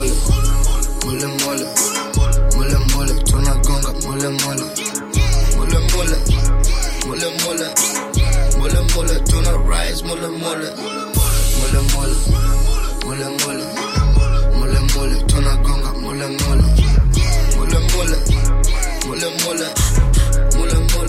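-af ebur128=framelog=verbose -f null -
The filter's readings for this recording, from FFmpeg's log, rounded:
Integrated loudness:
  I:         -17.6 LUFS
  Threshold: -27.6 LUFS
Loudness range:
  LRA:         1.7 LU
  Threshold: -37.7 LUFS
  LRA low:   -18.5 LUFS
  LRA high:  -16.8 LUFS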